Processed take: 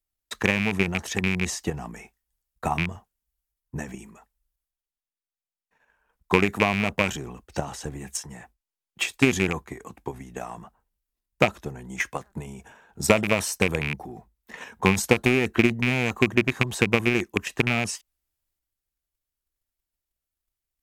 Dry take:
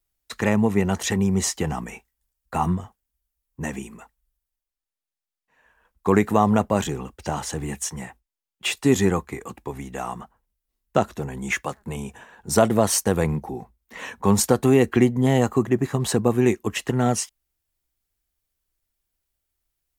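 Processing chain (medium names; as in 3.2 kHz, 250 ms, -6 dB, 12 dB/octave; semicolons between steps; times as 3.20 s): rattle on loud lows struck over -21 dBFS, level -7 dBFS; speed mistake 25 fps video run at 24 fps; transient shaper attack +10 dB, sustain +6 dB; trim -9 dB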